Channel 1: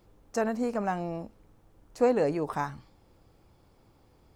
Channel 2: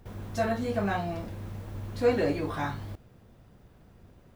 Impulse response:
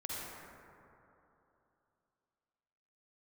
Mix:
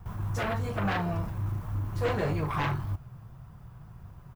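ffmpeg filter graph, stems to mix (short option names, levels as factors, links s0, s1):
-filter_complex "[0:a]volume=0.531[s0];[1:a]equalizer=f=125:t=o:w=1:g=11,equalizer=f=250:t=o:w=1:g=-11,equalizer=f=500:t=o:w=1:g=-11,equalizer=f=1000:t=o:w=1:g=9,equalizer=f=2000:t=o:w=1:g=-5,equalizer=f=4000:t=o:w=1:g=-8,equalizer=f=8000:t=o:w=1:g=-4,aeval=exprs='0.168*sin(PI/2*3.55*val(0)/0.168)':c=same,adelay=1.9,volume=0.562[s1];[s0][s1]amix=inputs=2:normalize=0,equalizer=f=860:t=o:w=0.37:g=-3,flanger=delay=3.9:depth=2.4:regen=-61:speed=1.7:shape=triangular"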